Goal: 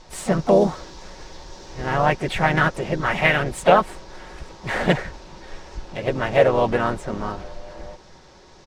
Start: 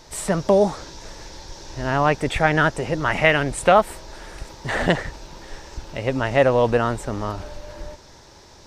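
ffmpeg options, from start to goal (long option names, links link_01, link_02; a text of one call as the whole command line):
ffmpeg -i in.wav -filter_complex "[0:a]adynamicsmooth=sensitivity=6:basefreq=5900,aecho=1:1:5.4:0.48,asplit=4[link_01][link_02][link_03][link_04];[link_02]asetrate=37084,aresample=44100,atempo=1.18921,volume=-8dB[link_05];[link_03]asetrate=52444,aresample=44100,atempo=0.840896,volume=-9dB[link_06];[link_04]asetrate=58866,aresample=44100,atempo=0.749154,volume=-16dB[link_07];[link_01][link_05][link_06][link_07]amix=inputs=4:normalize=0,volume=-2.5dB" out.wav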